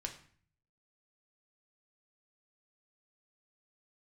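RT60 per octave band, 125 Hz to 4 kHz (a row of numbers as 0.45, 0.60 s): 0.90, 0.70, 0.50, 0.50, 0.55, 0.45 s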